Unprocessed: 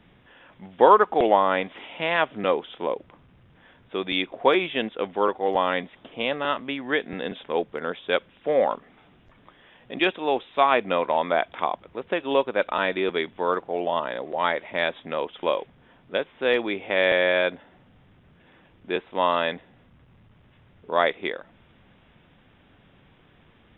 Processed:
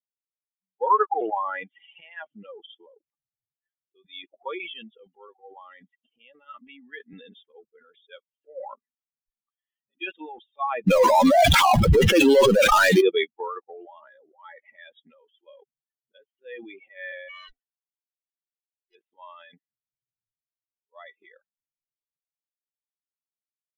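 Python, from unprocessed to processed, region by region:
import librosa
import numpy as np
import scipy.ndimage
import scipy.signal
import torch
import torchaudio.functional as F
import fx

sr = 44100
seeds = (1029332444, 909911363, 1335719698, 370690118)

y = fx.chain(x, sr, fx.low_shelf(hz=120.0, db=7.0),
    fx.power_curve(exponent=0.35),
    fx.env_flatten(amount_pct=100), at=(10.87, 13.01))
y = fx.chain(y, sr, fx.lower_of_two(delay_ms=2.7),
    fx.low_shelf(hz=480.0, db=-7.0), at=(17.29, 18.95))
y = fx.bin_expand(y, sr, power=3.0)
y = fx.sustainer(y, sr, db_per_s=35.0)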